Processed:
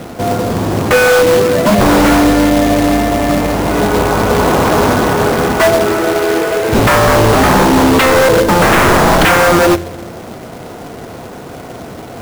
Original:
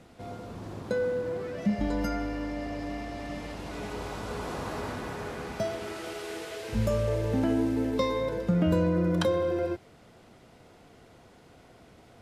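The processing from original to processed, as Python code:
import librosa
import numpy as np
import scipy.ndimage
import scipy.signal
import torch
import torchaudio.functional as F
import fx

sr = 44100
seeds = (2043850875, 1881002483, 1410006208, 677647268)

y = scipy.signal.sosfilt(scipy.signal.butter(2, 1500.0, 'lowpass', fs=sr, output='sos'), x)
y = fx.low_shelf(y, sr, hz=73.0, db=-9.5)
y = fx.rev_spring(y, sr, rt60_s=1.3, pass_ms=(35, 58), chirp_ms=45, drr_db=16.0)
y = fx.fold_sine(y, sr, drive_db=15, ceiling_db=-14.5)
y = fx.quant_companded(y, sr, bits=4)
y = y * 10.0 ** (8.0 / 20.0)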